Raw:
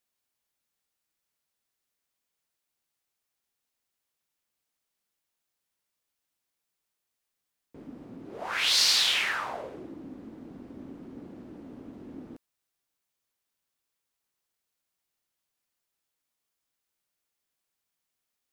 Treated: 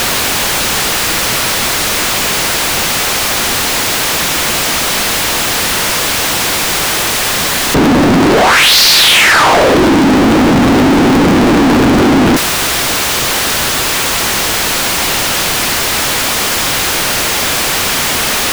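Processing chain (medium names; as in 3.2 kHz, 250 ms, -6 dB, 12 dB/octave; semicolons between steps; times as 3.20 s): jump at every zero crossing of -27.5 dBFS; treble shelf 6.3 kHz -11 dB; waveshaping leveller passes 5; trim +8.5 dB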